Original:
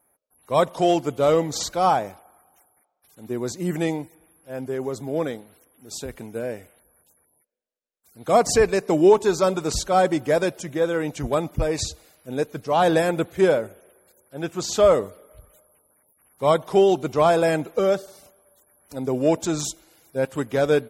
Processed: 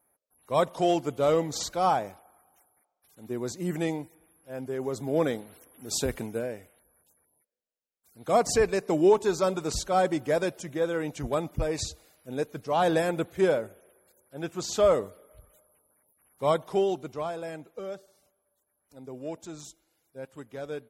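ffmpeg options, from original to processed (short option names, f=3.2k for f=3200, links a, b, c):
-af "volume=5dB,afade=t=in:st=4.74:d=1.32:silence=0.316228,afade=t=out:st=6.06:d=0.43:silence=0.298538,afade=t=out:st=16.45:d=0.87:silence=0.266073"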